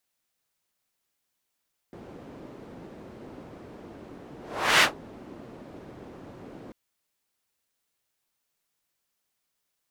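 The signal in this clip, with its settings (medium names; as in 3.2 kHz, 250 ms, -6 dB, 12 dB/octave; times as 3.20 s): whoosh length 4.79 s, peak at 2.89 s, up 0.45 s, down 0.13 s, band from 320 Hz, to 2.2 kHz, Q 1, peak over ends 26.5 dB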